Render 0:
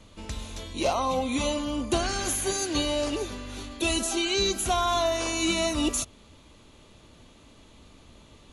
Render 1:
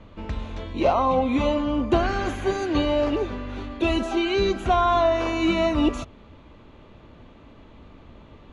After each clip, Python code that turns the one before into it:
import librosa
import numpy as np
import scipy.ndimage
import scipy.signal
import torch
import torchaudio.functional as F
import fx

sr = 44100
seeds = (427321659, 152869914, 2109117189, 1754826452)

y = scipy.signal.sosfilt(scipy.signal.butter(2, 2000.0, 'lowpass', fs=sr, output='sos'), x)
y = y * librosa.db_to_amplitude(6.0)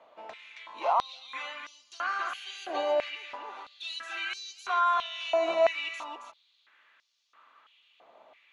y = x + 10.0 ** (-7.0 / 20.0) * np.pad(x, (int(273 * sr / 1000.0), 0))[:len(x)]
y = fx.filter_held_highpass(y, sr, hz=3.0, low_hz=690.0, high_hz=5300.0)
y = y * librosa.db_to_amplitude(-9.0)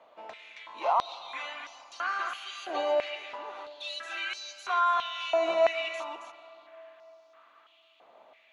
y = fx.rev_freeverb(x, sr, rt60_s=4.0, hf_ratio=0.5, predelay_ms=100, drr_db=16.0)